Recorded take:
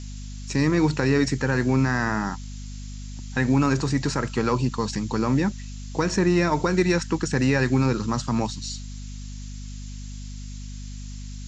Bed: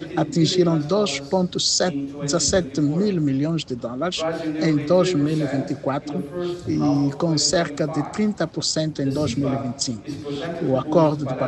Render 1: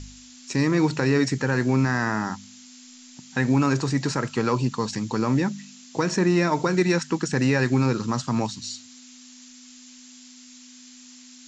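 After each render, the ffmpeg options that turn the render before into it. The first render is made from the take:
-af "bandreject=f=50:t=h:w=4,bandreject=f=100:t=h:w=4,bandreject=f=150:t=h:w=4,bandreject=f=200:t=h:w=4"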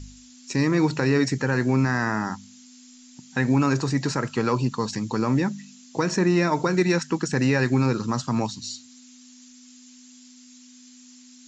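-af "afftdn=nr=6:nf=-47"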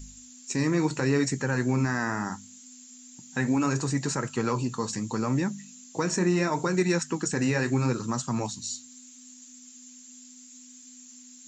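-af "aexciter=amount=4.2:drive=5.8:freq=6900,flanger=delay=4.3:depth=8.5:regen=-61:speed=0.73:shape=triangular"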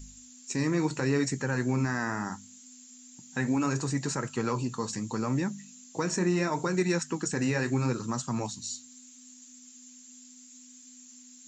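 -af "volume=0.75"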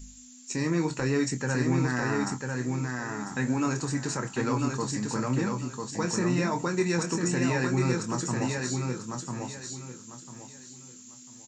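-filter_complex "[0:a]asplit=2[s0][s1];[s1]adelay=24,volume=0.376[s2];[s0][s2]amix=inputs=2:normalize=0,asplit=2[s3][s4];[s4]aecho=0:1:997|1994|2991|3988:0.631|0.17|0.046|0.0124[s5];[s3][s5]amix=inputs=2:normalize=0"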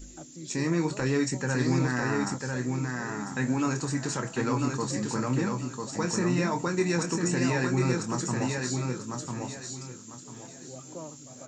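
-filter_complex "[1:a]volume=0.0562[s0];[0:a][s0]amix=inputs=2:normalize=0"

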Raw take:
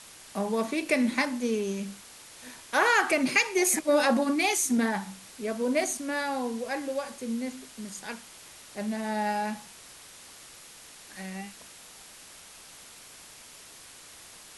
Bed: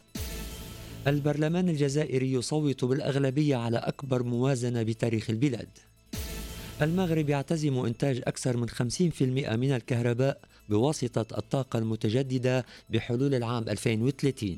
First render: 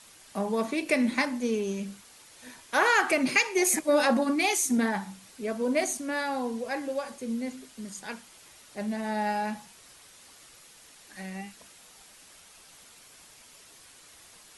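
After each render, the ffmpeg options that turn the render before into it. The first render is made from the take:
-af "afftdn=nr=6:nf=-50"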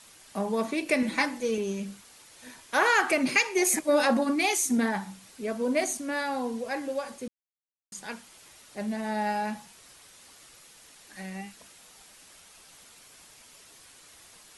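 -filter_complex "[0:a]asettb=1/sr,asplit=3[s0][s1][s2];[s0]atrim=end=1.024[s3];[s1]atrim=start=1.02:end=1.58,asetpts=PTS-STARTPTS,afade=t=in:d=0.004:c=qsin,afade=t=out:st=0.556:d=0.004:c=qsin,aecho=1:1:6.1:0.65,atrim=end_sample=24696[s4];[s2]atrim=start=1.576[s5];[s3][s4]acrossfade=d=0.004:c1=hsin:c2=qsin[s6];[s6][s5]acrossfade=d=0.004:c1=qsin:c2=hsin,asplit=3[s7][s8][s9];[s7]atrim=end=7.28,asetpts=PTS-STARTPTS,afade=t=out:st=7.276:d=0.004:c=hsin[s10];[s8]atrim=start=7.28:end=7.92,asetpts=PTS-STARTPTS,volume=0[s11];[s9]atrim=start=7.92,asetpts=PTS-STARTPTS,afade=t=in:d=0.004:c=hsin[s12];[s10][s11][s12]concat=n=3:v=0:a=1"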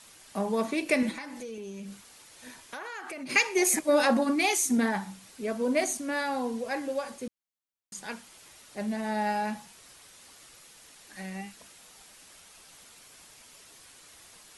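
-filter_complex "[0:a]asplit=3[s0][s1][s2];[s0]afade=t=out:st=1.11:d=0.02[s3];[s1]acompressor=threshold=0.0141:ratio=6:attack=3.2:release=140:knee=1:detection=peak,afade=t=in:st=1.11:d=0.02,afade=t=out:st=3.29:d=0.02[s4];[s2]afade=t=in:st=3.29:d=0.02[s5];[s3][s4][s5]amix=inputs=3:normalize=0"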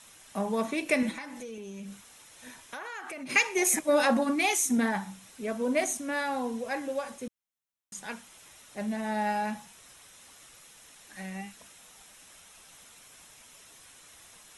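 -af "equalizer=f=370:w=1.8:g=-3,bandreject=f=4600:w=6.5"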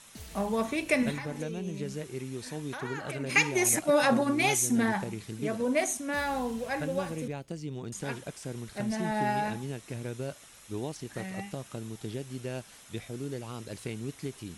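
-filter_complex "[1:a]volume=0.299[s0];[0:a][s0]amix=inputs=2:normalize=0"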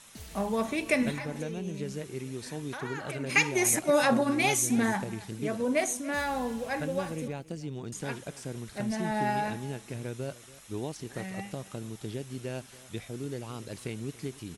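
-af "aecho=1:1:284:0.106"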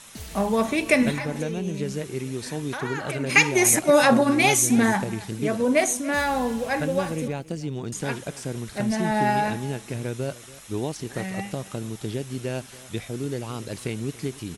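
-af "volume=2.24"

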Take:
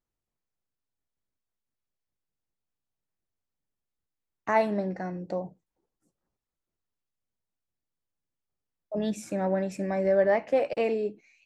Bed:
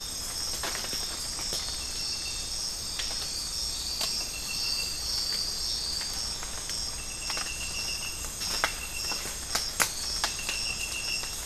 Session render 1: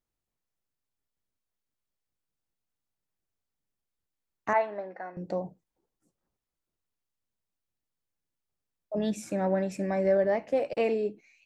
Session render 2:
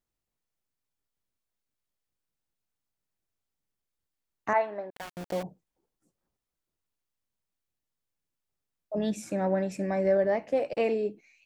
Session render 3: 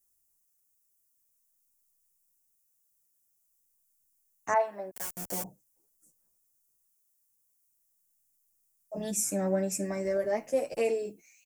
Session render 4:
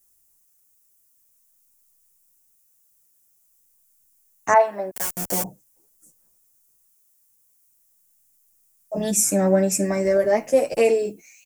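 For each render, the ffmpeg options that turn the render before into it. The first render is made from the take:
-filter_complex "[0:a]asettb=1/sr,asplit=3[s0][s1][s2];[s0]atrim=end=4.534[s3];[s1]atrim=start=4.53:end=5.17,asetpts=PTS-STARTPTS,afade=t=in:d=0.004:c=qsin,afade=t=out:st=0.636:d=0.004:c=qsin,highpass=620,lowpass=2100[s4];[s2]atrim=start=5.166[s5];[s3][s4]acrossfade=d=0.004:c1=hsin:c2=qsin[s6];[s6][s5]acrossfade=d=0.004:c1=qsin:c2=hsin,asettb=1/sr,asplit=3[s7][s8][s9];[s7]atrim=end=10.174[s10];[s8]atrim=start=10.17:end=10.75,asetpts=PTS-STARTPTS,afade=t=in:d=0.004:c=qsin,afade=t=out:st=0.576:d=0.004:c=qsin,equalizer=f=1500:t=o:w=2.8:g=-6[s11];[s9]atrim=start=10.746[s12];[s10][s11]acrossfade=d=0.004:c1=hsin:c2=qsin[s13];[s13][s12]acrossfade=d=0.004:c1=qsin:c2=hsin"
-filter_complex "[0:a]asettb=1/sr,asplit=3[s0][s1][s2];[s0]atrim=end=4.904[s3];[s1]atrim=start=4.9:end=5.43,asetpts=PTS-STARTPTS,afade=t=in:d=0.004:c=qsin,afade=t=out:st=0.526:d=0.004:c=qsin,aeval=exprs='val(0)*gte(abs(val(0)),0.0168)':c=same[s4];[s2]atrim=start=5.426[s5];[s3][s4]acrossfade=d=0.004:c1=hsin:c2=qsin[s6];[s6][s5]acrossfade=d=0.004:c1=qsin:c2=hsin"
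-filter_complex "[0:a]aexciter=amount=5.5:drive=8.9:freq=5700,asplit=2[s0][s1];[s1]adelay=8.8,afreqshift=0.46[s2];[s0][s2]amix=inputs=2:normalize=1"
-af "volume=3.35"

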